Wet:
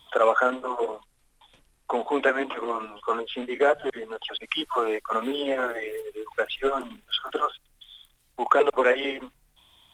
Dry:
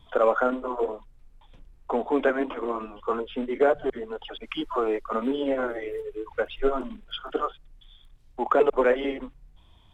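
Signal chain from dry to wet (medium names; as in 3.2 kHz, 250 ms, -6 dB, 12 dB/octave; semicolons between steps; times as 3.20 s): tilt EQ +3.5 dB/octave; trim +3 dB; Opus 32 kbps 48 kHz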